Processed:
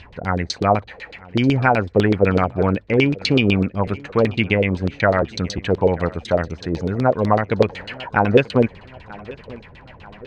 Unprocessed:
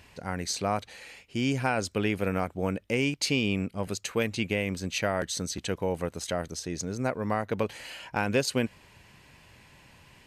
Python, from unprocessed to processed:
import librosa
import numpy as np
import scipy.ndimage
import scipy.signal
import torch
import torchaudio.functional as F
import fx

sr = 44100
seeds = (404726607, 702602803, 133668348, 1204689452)

y = fx.low_shelf(x, sr, hz=110.0, db=10.0)
y = fx.filter_lfo_lowpass(y, sr, shape='saw_down', hz=8.0, low_hz=370.0, high_hz=4200.0, q=3.2)
y = fx.peak_eq(y, sr, hz=2800.0, db=-3.0, octaves=0.51)
y = fx.echo_feedback(y, sr, ms=937, feedback_pct=49, wet_db=-21.0)
y = y * librosa.db_to_amplitude(7.5)